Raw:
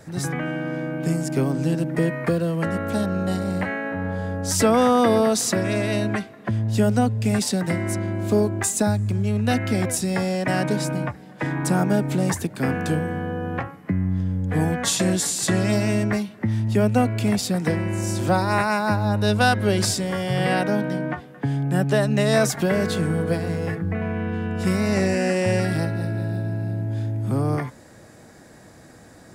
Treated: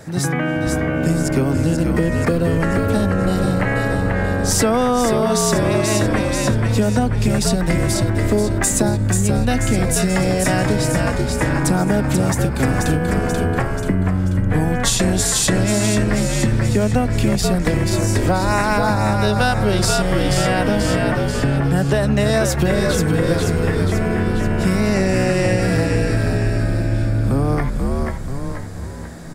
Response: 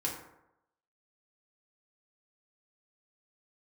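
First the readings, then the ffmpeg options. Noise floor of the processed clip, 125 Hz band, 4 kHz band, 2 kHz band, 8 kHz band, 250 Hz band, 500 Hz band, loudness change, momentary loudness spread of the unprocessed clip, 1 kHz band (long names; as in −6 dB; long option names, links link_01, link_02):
−22 dBFS, +5.5 dB, +5.0 dB, +5.0 dB, +6.0 dB, +4.0 dB, +4.0 dB, +4.5 dB, 8 LU, +3.5 dB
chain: -filter_complex "[0:a]asplit=8[link_01][link_02][link_03][link_04][link_05][link_06][link_07][link_08];[link_02]adelay=485,afreqshift=-69,volume=-4.5dB[link_09];[link_03]adelay=970,afreqshift=-138,volume=-10dB[link_10];[link_04]adelay=1455,afreqshift=-207,volume=-15.5dB[link_11];[link_05]adelay=1940,afreqshift=-276,volume=-21dB[link_12];[link_06]adelay=2425,afreqshift=-345,volume=-26.6dB[link_13];[link_07]adelay=2910,afreqshift=-414,volume=-32.1dB[link_14];[link_08]adelay=3395,afreqshift=-483,volume=-37.6dB[link_15];[link_01][link_09][link_10][link_11][link_12][link_13][link_14][link_15]amix=inputs=8:normalize=0,acompressor=threshold=-20dB:ratio=6,volume=7dB"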